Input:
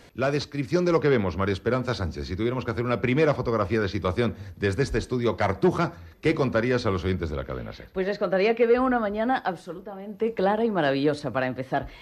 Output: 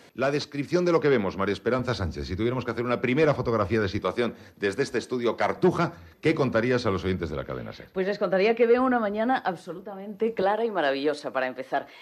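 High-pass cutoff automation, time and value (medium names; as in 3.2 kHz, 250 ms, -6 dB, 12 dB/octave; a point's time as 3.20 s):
160 Hz
from 1.79 s 48 Hz
from 2.63 s 160 Hz
from 3.24 s 58 Hz
from 3.99 s 230 Hz
from 5.57 s 100 Hz
from 10.42 s 360 Hz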